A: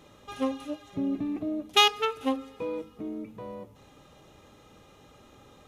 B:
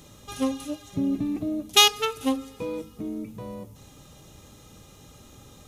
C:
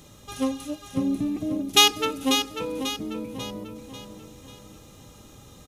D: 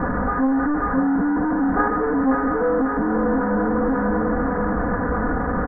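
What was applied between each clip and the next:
tone controls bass +9 dB, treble +14 dB
feedback echo 0.542 s, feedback 44%, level -8 dB
delta modulation 16 kbps, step -17 dBFS; steep low-pass 1700 Hz 72 dB/oct; comb 4.1 ms, depth 94%

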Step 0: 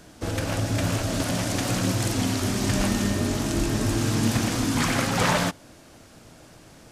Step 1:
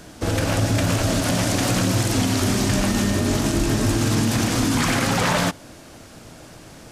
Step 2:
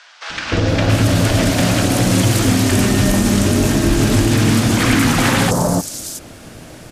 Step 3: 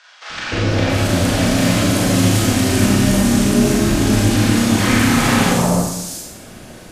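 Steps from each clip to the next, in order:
limiter -17.5 dBFS, peak gain reduction 7.5 dB; gain +6.5 dB
three bands offset in time mids, lows, highs 0.3/0.68 s, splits 980/5500 Hz; gain +6.5 dB
reverb RT60 0.85 s, pre-delay 30 ms, DRR -3.5 dB; gain -5.5 dB

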